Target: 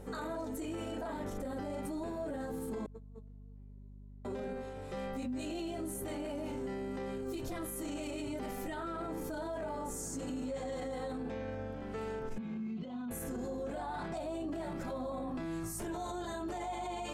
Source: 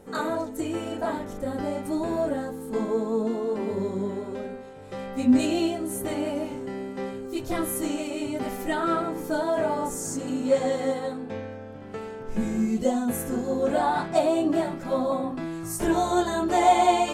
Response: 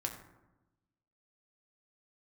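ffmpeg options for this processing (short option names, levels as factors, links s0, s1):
-filter_complex "[0:a]asettb=1/sr,asplit=3[s0][s1][s2];[s0]atrim=end=2.864[s3];[s1]atrim=start=2.86:end=4.25,asetpts=PTS-STARTPTS,afade=t=in:d=0.004:c=qsin,afade=t=out:st=1.386:d=0.004:c=qsin,agate=range=0.00562:threshold=0.112:ratio=16:detection=peak[s4];[s2]atrim=start=4.246[s5];[s3][s4]acrossfade=d=0.004:c1=hsin:c2=qsin[s6];[s6][s5]acrossfade=d=0.004:c1=qsin:c2=hsin,acompressor=threshold=0.0398:ratio=6,alimiter=level_in=2.37:limit=0.0631:level=0:latency=1:release=18,volume=0.422,aeval=exprs='val(0)+0.00355*(sin(2*PI*50*n/s)+sin(2*PI*2*50*n/s)/2+sin(2*PI*3*50*n/s)/3+sin(2*PI*4*50*n/s)/4+sin(2*PI*5*50*n/s)/5)':c=same,asettb=1/sr,asplit=3[s7][s8][s9];[s7]atrim=end=12.384[s10];[s8]atrim=start=12.38:end=13.11,asetpts=PTS-STARTPTS,afade=t=in:d=0.004:c=qsin,afade=t=out:st=0.726:d=0.004:c=qsin,highpass=170,equalizer=f=170:t=q:w=4:g=7,equalizer=f=320:t=q:w=4:g=-7,equalizer=f=490:t=q:w=4:g=-10,equalizer=f=720:t=q:w=4:g=-7,equalizer=f=1800:t=q:w=4:g=-8,lowpass=f=3700:w=0.5412,lowpass=f=3700:w=1.3066[s11];[s9]atrim=start=13.106[s12];[s10][s11]acrossfade=d=0.004:c1=hsin:c2=qsin[s13];[s13][s12]acrossfade=d=0.004:c1=qsin:c2=hsin,volume=0.891"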